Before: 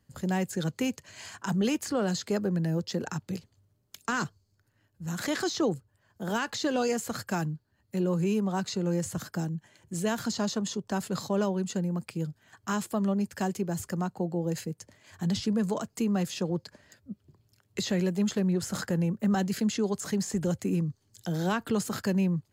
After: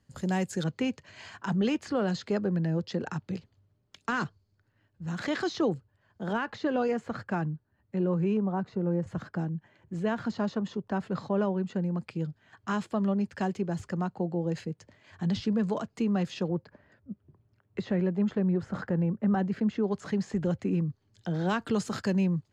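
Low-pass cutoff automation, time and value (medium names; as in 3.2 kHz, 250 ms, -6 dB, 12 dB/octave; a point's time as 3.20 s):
8.5 kHz
from 0.64 s 3.7 kHz
from 6.33 s 2.1 kHz
from 8.37 s 1.2 kHz
from 9.07 s 2.2 kHz
from 11.82 s 3.7 kHz
from 16.48 s 1.7 kHz
from 19.91 s 3 kHz
from 21.49 s 6 kHz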